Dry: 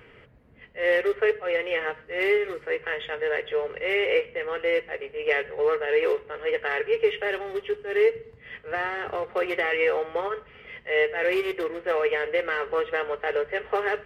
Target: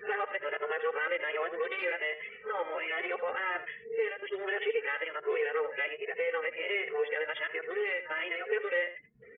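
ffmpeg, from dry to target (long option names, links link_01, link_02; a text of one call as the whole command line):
ffmpeg -i in.wav -filter_complex "[0:a]areverse,afftdn=noise_reduction=31:noise_floor=-47,tiltshelf=frequency=940:gain=-5.5,asplit=2[link_01][link_02];[link_02]alimiter=limit=-20dB:level=0:latency=1:release=38,volume=0dB[link_03];[link_01][link_03]amix=inputs=2:normalize=0,acompressor=threshold=-32dB:ratio=2,acrossover=split=160 3300:gain=0.112 1 0.2[link_04][link_05][link_06];[link_04][link_05][link_06]amix=inputs=3:normalize=0,acompressor=mode=upward:threshold=-45dB:ratio=2.5,atempo=1.5,asplit=2[link_07][link_08];[link_08]aecho=0:1:81:0.251[link_09];[link_07][link_09]amix=inputs=2:normalize=0,asplit=2[link_10][link_11];[link_11]adelay=2.3,afreqshift=1.3[link_12];[link_10][link_12]amix=inputs=2:normalize=1" out.wav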